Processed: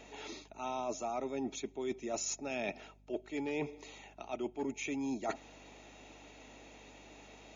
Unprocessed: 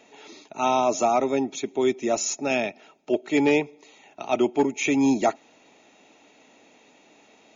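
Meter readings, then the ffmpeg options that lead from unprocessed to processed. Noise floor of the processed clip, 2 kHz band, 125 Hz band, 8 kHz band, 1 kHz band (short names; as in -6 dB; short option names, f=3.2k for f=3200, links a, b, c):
-59 dBFS, -14.0 dB, -12.5 dB, n/a, -16.0 dB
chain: -af "areverse,acompressor=threshold=-35dB:ratio=8,areverse,aeval=exprs='val(0)+0.000794*(sin(2*PI*50*n/s)+sin(2*PI*2*50*n/s)/2+sin(2*PI*3*50*n/s)/3+sin(2*PI*4*50*n/s)/4+sin(2*PI*5*50*n/s)/5)':c=same"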